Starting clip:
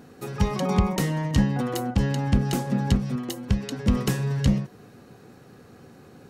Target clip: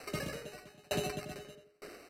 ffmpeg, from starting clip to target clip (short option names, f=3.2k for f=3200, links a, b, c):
-filter_complex "[0:a]acrusher=samples=39:mix=1:aa=0.000001,equalizer=f=310:t=o:w=0.54:g=-14,areverse,acompressor=threshold=-29dB:ratio=6,areverse,asetrate=132300,aresample=44100,bandreject=f=46.3:t=h:w=4,bandreject=f=92.6:t=h:w=4,bandreject=f=138.9:t=h:w=4,bandreject=f=185.2:t=h:w=4,bandreject=f=231.5:t=h:w=4,bandreject=f=277.8:t=h:w=4,bandreject=f=324.1:t=h:w=4,bandreject=f=370.4:t=h:w=4,bandreject=f=416.7:t=h:w=4,bandreject=f=463:t=h:w=4,bandreject=f=509.3:t=h:w=4,bandreject=f=555.6:t=h:w=4,bandreject=f=601.9:t=h:w=4,bandreject=f=648.2:t=h:w=4,asplit=2[a][b];[b]adelay=89,lowpass=f=4k:p=1,volume=-4dB,asplit=2[c][d];[d]adelay=89,lowpass=f=4k:p=1,volume=0.33,asplit=2[e][f];[f]adelay=89,lowpass=f=4k:p=1,volume=0.33,asplit=2[g][h];[h]adelay=89,lowpass=f=4k:p=1,volume=0.33[i];[c][e][g][i]amix=inputs=4:normalize=0[j];[a][j]amix=inputs=2:normalize=0,aresample=32000,aresample=44100,aeval=exprs='val(0)*pow(10,-32*if(lt(mod(1.1*n/s,1),2*abs(1.1)/1000),1-mod(1.1*n/s,1)/(2*abs(1.1)/1000),(mod(1.1*n/s,1)-2*abs(1.1)/1000)/(1-2*abs(1.1)/1000))/20)':c=same,volume=2dB"